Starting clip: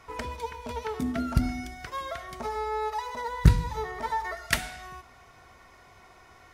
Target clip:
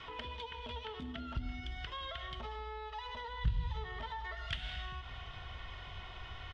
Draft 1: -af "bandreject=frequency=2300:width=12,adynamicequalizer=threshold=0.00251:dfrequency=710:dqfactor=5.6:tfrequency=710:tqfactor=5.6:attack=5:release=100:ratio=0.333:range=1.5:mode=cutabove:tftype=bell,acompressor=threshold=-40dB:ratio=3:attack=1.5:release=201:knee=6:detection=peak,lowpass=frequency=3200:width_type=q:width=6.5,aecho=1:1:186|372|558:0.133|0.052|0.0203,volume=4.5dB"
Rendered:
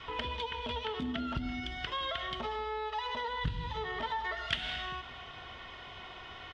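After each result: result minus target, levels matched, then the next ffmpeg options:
downward compressor: peak gain reduction −7.5 dB; 125 Hz band −6.5 dB
-af "bandreject=frequency=2300:width=12,adynamicequalizer=threshold=0.00251:dfrequency=710:dqfactor=5.6:tfrequency=710:tqfactor=5.6:attack=5:release=100:ratio=0.333:range=1.5:mode=cutabove:tftype=bell,acompressor=threshold=-51dB:ratio=3:attack=1.5:release=201:knee=6:detection=peak,lowpass=frequency=3200:width_type=q:width=6.5,aecho=1:1:186|372|558:0.133|0.052|0.0203,volume=4.5dB"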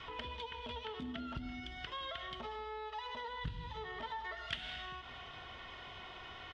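125 Hz band −6.5 dB
-af "bandreject=frequency=2300:width=12,adynamicequalizer=threshold=0.00251:dfrequency=710:dqfactor=5.6:tfrequency=710:tqfactor=5.6:attack=5:release=100:ratio=0.333:range=1.5:mode=cutabove:tftype=bell,acompressor=threshold=-51dB:ratio=3:attack=1.5:release=201:knee=6:detection=peak,lowpass=frequency=3200:width_type=q:width=6.5,asubboost=boost=6:cutoff=110,aecho=1:1:186|372|558:0.133|0.052|0.0203,volume=4.5dB"

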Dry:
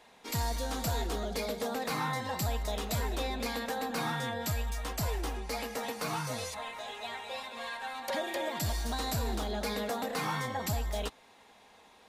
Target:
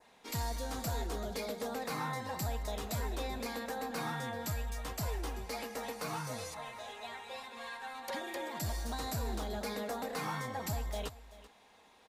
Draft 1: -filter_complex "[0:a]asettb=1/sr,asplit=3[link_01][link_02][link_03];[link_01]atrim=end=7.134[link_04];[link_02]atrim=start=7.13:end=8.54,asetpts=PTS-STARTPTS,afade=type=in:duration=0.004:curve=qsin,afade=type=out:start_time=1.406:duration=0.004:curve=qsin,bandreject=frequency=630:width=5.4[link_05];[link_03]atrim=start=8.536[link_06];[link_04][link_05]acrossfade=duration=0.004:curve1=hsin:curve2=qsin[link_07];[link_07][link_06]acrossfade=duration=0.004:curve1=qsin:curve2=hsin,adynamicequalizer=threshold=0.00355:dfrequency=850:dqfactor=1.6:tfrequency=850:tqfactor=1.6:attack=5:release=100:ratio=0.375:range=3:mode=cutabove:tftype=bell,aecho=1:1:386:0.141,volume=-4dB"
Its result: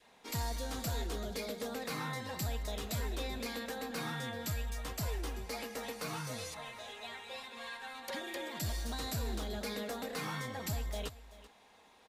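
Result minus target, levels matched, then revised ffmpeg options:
1,000 Hz band −3.5 dB
-filter_complex "[0:a]asettb=1/sr,asplit=3[link_01][link_02][link_03];[link_01]atrim=end=7.134[link_04];[link_02]atrim=start=7.13:end=8.54,asetpts=PTS-STARTPTS,afade=type=in:duration=0.004:curve=qsin,afade=type=out:start_time=1.406:duration=0.004:curve=qsin,bandreject=frequency=630:width=5.4[link_05];[link_03]atrim=start=8.536[link_06];[link_04][link_05]acrossfade=duration=0.004:curve1=hsin:curve2=qsin[link_07];[link_07][link_06]acrossfade=duration=0.004:curve1=qsin:curve2=hsin,adynamicequalizer=threshold=0.00355:dfrequency=3200:dqfactor=1.6:tfrequency=3200:tqfactor=1.6:attack=5:release=100:ratio=0.375:range=3:mode=cutabove:tftype=bell,aecho=1:1:386:0.141,volume=-4dB"

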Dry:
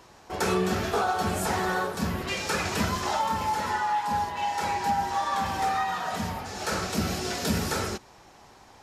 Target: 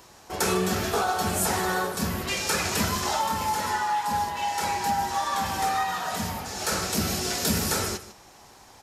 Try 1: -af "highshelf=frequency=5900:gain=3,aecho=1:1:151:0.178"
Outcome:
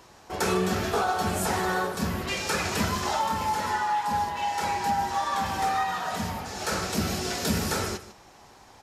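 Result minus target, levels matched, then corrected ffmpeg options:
8,000 Hz band −4.0 dB
-af "highshelf=frequency=5900:gain=11.5,aecho=1:1:151:0.178"

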